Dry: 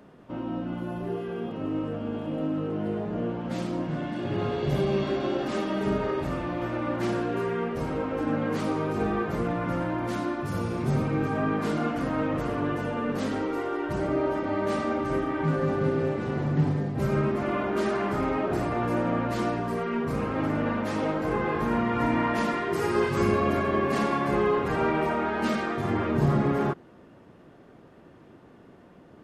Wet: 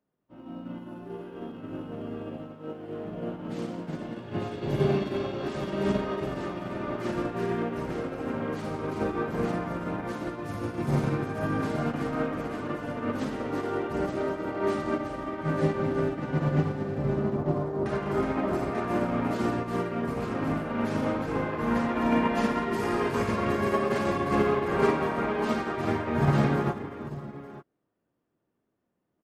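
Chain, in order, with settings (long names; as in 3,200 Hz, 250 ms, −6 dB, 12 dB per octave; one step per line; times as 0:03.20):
0:02.37–0:03.05: low-shelf EQ 220 Hz −9 dB
0:16.98–0:17.86: low-pass filter 1,000 Hz 24 dB per octave
0:21.95–0:22.48: comb filter 4.6 ms, depth 71%
in parallel at +2 dB: brickwall limiter −23 dBFS, peak gain reduction 10.5 dB
on the sum: bit reduction 11 bits
multi-tap delay 56/166/365/890 ms −8/−11/−5.5/−4 dB
expander for the loud parts 2.5 to 1, over −37 dBFS
level −3.5 dB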